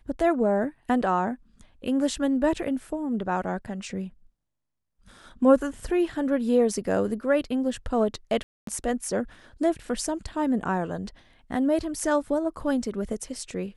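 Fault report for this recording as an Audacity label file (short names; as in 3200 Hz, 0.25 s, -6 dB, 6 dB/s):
8.430000	8.670000	gap 0.243 s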